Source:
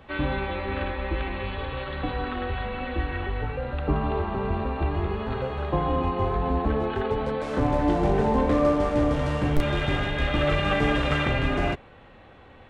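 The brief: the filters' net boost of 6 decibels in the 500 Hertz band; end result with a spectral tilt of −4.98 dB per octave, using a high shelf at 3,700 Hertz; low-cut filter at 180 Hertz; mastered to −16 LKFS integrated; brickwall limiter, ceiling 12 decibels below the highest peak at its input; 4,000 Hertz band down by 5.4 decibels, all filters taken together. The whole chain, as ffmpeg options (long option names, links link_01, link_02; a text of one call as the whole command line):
ffmpeg -i in.wav -af "highpass=180,equalizer=frequency=500:width_type=o:gain=7.5,highshelf=frequency=3700:gain=-4.5,equalizer=frequency=4000:width_type=o:gain=-5.5,volume=12.5dB,alimiter=limit=-7dB:level=0:latency=1" out.wav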